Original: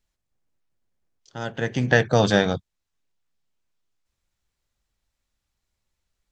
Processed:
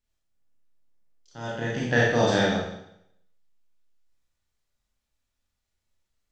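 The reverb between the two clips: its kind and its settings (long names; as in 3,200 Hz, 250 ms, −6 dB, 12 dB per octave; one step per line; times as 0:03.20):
four-comb reverb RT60 0.75 s, combs from 26 ms, DRR −5.5 dB
level −8.5 dB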